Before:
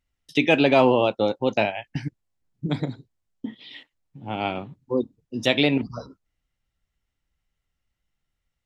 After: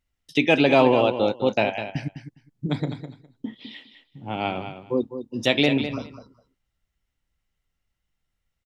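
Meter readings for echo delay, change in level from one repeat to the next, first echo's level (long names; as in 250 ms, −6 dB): 205 ms, −16.0 dB, −10.0 dB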